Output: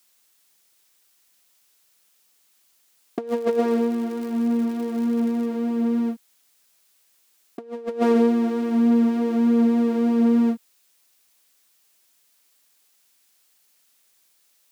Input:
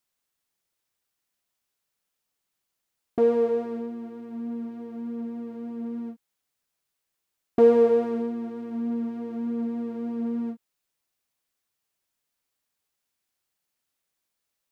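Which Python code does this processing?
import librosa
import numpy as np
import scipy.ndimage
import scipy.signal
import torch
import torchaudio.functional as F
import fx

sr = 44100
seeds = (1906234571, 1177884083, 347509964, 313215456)

y = scipy.signal.sosfilt(scipy.signal.butter(4, 170.0, 'highpass', fs=sr, output='sos'), x)
y = fx.high_shelf(y, sr, hz=2200.0, db=8.5)
y = fx.over_compress(y, sr, threshold_db=-27.0, ratio=-0.5)
y = fx.dmg_crackle(y, sr, seeds[0], per_s=200.0, level_db=-41.0, at=(3.27, 5.45), fade=0.02)
y = y * librosa.db_to_amplitude(8.0)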